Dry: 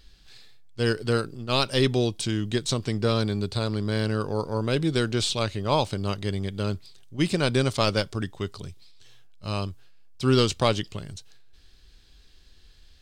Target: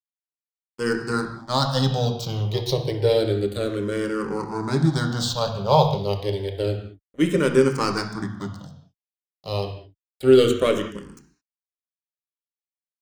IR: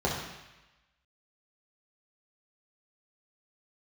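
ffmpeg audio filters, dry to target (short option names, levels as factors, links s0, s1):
-filter_complex "[0:a]aeval=exprs='sgn(val(0))*max(abs(val(0))-0.0158,0)':c=same,asplit=2[s0][s1];[1:a]atrim=start_sample=2205,afade=t=out:st=0.27:d=0.01,atrim=end_sample=12348[s2];[s1][s2]afir=irnorm=-1:irlink=0,volume=0.266[s3];[s0][s3]amix=inputs=2:normalize=0,asplit=2[s4][s5];[s5]afreqshift=-0.29[s6];[s4][s6]amix=inputs=2:normalize=1,volume=1.33"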